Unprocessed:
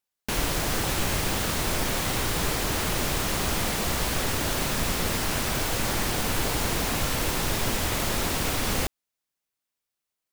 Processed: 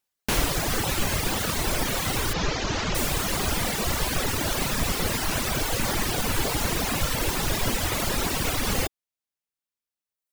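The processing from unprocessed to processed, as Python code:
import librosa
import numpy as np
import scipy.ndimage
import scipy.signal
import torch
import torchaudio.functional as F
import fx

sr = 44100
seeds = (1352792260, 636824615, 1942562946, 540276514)

y = fx.steep_lowpass(x, sr, hz=6800.0, slope=48, at=(2.33, 2.95))
y = fx.dereverb_blind(y, sr, rt60_s=1.5)
y = y * 10.0 ** (4.0 / 20.0)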